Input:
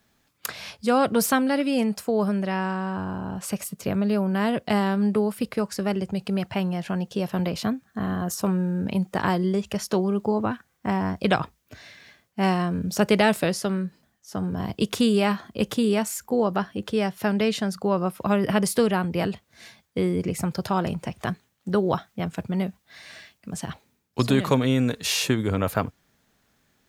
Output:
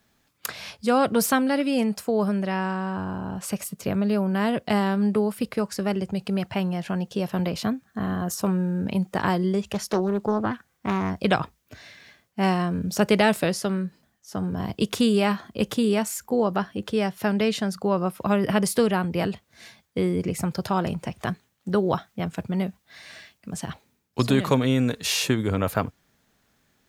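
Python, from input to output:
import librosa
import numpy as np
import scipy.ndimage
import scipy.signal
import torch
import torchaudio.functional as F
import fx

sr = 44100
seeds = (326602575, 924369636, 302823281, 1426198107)

y = fx.doppler_dist(x, sr, depth_ms=0.3, at=(9.7, 11.1))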